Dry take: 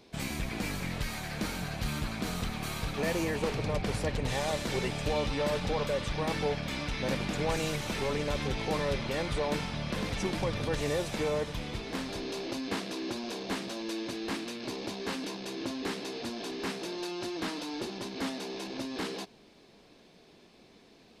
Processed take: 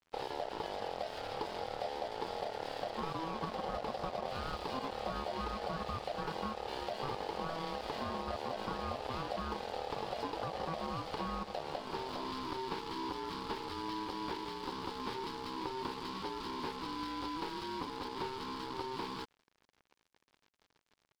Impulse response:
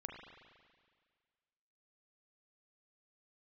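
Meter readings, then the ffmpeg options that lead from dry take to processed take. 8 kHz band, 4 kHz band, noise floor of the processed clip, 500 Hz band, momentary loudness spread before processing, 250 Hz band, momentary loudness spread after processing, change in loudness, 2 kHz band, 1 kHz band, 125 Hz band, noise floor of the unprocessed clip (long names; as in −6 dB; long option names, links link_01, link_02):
−15.5 dB, −7.0 dB, −78 dBFS, −7.0 dB, 6 LU, −9.0 dB, 2 LU, −6.5 dB, −9.5 dB, +1.0 dB, −12.5 dB, −58 dBFS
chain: -af "equalizer=frequency=1600:width=0.73:gain=-10.5,acompressor=threshold=-36dB:ratio=6,aeval=exprs='val(0)*sin(2*PI*650*n/s)':channel_layout=same,aresample=11025,acrusher=bits=4:mode=log:mix=0:aa=0.000001,aresample=44100,aeval=exprs='sgn(val(0))*max(abs(val(0))-0.00168,0)':channel_layout=same,volume=4.5dB"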